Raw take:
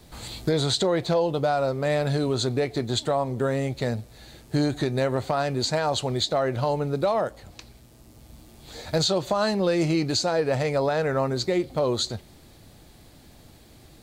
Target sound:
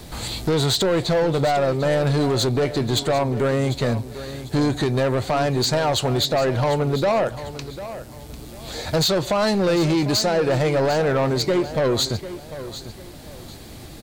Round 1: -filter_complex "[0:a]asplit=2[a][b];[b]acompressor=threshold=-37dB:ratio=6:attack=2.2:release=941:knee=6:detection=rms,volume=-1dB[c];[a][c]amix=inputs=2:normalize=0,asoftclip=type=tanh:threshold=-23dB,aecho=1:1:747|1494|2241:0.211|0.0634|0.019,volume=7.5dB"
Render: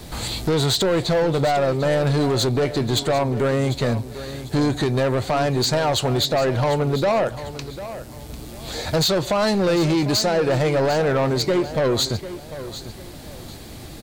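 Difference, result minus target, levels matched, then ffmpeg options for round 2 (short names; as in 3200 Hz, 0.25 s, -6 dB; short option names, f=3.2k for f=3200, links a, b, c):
compressor: peak gain reduction -8.5 dB
-filter_complex "[0:a]asplit=2[a][b];[b]acompressor=threshold=-47dB:ratio=6:attack=2.2:release=941:knee=6:detection=rms,volume=-1dB[c];[a][c]amix=inputs=2:normalize=0,asoftclip=type=tanh:threshold=-23dB,aecho=1:1:747|1494|2241:0.211|0.0634|0.019,volume=7.5dB"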